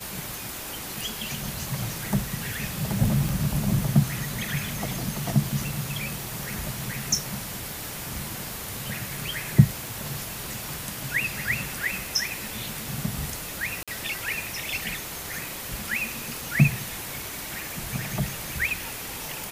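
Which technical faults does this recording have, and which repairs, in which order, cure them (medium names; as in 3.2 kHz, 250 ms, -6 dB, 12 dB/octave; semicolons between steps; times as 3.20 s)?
3.29 s: pop
9.87 s: pop
13.83–13.88 s: dropout 46 ms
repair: de-click; interpolate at 13.83 s, 46 ms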